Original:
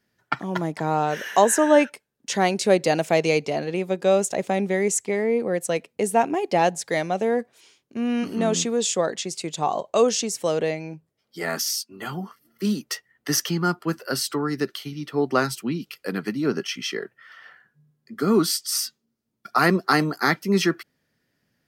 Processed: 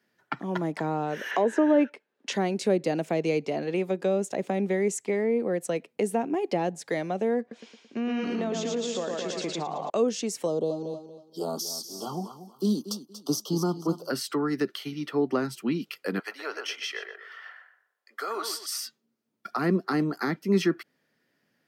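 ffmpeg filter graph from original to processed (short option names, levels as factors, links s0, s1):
-filter_complex "[0:a]asettb=1/sr,asplit=3[s0][s1][s2];[s0]atrim=end=1.314[s3];[s1]atrim=start=1.31:end=2.32,asetpts=PTS-STARTPTS,afade=t=in:d=0.004:c=qsin,afade=t=out:st=1.006:d=0.004:c=qsin,aemphasis=mode=production:type=50kf,acontrast=58,highpass=310,lowpass=2900[s4];[s2]atrim=start=2.316[s5];[s3][s4]acrossfade=d=0.004:c1=hsin:c2=qsin[s6];[s6][s5]acrossfade=d=0.004:c1=qsin:c2=hsin,asettb=1/sr,asplit=3[s7][s8][s9];[s7]atrim=end=7.404[s10];[s8]atrim=start=7.4:end=9.9,asetpts=PTS-STARTPTS,afade=t=in:d=0.004:c=qsin,afade=t=out:st=2.496:d=0.004:c=qsin,lowpass=f=6800:w=0.5412,lowpass=f=6800:w=1.3066,aecho=1:1:111|222|333|444|555|666|777:0.596|0.316|0.167|0.0887|0.047|0.0249|0.0132,atrim=end_sample=110250,acompressor=threshold=0.0562:ratio=4:attack=3.2:release=140:knee=1:detection=peak[s11];[s9]atrim=start=9.896[s12];[s10][s11]acrossfade=d=0.004:c1=hsin:c2=qsin[s13];[s13][s12]acrossfade=d=0.004:c1=qsin:c2=hsin,asettb=1/sr,asplit=3[s14][s15][s16];[s14]atrim=end=10.464[s17];[s15]atrim=start=10.46:end=14.1,asetpts=PTS-STARTPTS,afade=t=in:d=0.004:c=qsin,afade=t=out:st=3.636:d=0.004:c=qsin,asuperstop=centerf=2000:order=8:qfactor=0.89,aecho=1:1:235|470|705:0.224|0.0537|0.0129,atrim=end_sample=160524[s18];[s16]atrim=start=14.096[s19];[s17][s18]acrossfade=d=0.004:c1=hsin:c2=qsin[s20];[s20][s19]acrossfade=d=0.004:c1=qsin:c2=hsin,asettb=1/sr,asplit=3[s21][s22][s23];[s21]atrim=end=16.194[s24];[s22]atrim=start=16.19:end=18.66,asetpts=PTS-STARTPTS,afade=t=in:d=0.004:c=qsin,afade=t=out:st=2.466:d=0.004:c=qsin,highpass=f=600:w=0.5412,highpass=f=600:w=1.3066,asplit=2[s25][s26];[s26]adelay=122,lowpass=f=2100:p=1,volume=0.473,asplit=2[s27][s28];[s28]adelay=122,lowpass=f=2100:p=1,volume=0.31,asplit=2[s29][s30];[s30]adelay=122,lowpass=f=2100:p=1,volume=0.31,asplit=2[s31][s32];[s32]adelay=122,lowpass=f=2100:p=1,volume=0.31[s33];[s25][s27][s29][s31][s33]amix=inputs=5:normalize=0,atrim=end_sample=108927[s34];[s23]atrim=start=18.656[s35];[s24][s34]acrossfade=d=0.004:c1=hsin:c2=qsin[s36];[s36][s35]acrossfade=d=0.004:c1=qsin:c2=hsin,highpass=180,bass=f=250:g=-2,treble=f=4000:g=-5,acrossover=split=370[s37][s38];[s38]acompressor=threshold=0.0251:ratio=5[s39];[s37][s39]amix=inputs=2:normalize=0,volume=1.19"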